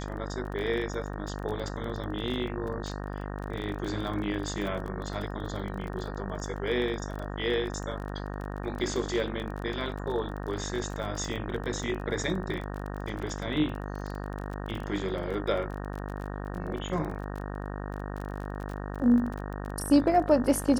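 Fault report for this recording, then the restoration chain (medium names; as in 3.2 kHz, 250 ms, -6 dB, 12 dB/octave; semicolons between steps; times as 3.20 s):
buzz 50 Hz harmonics 37 -36 dBFS
crackle 27 per s -35 dBFS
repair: de-click; de-hum 50 Hz, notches 37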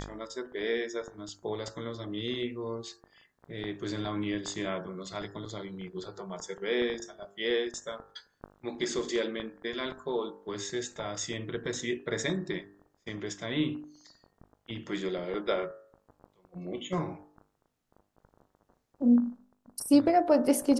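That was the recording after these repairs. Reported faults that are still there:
nothing left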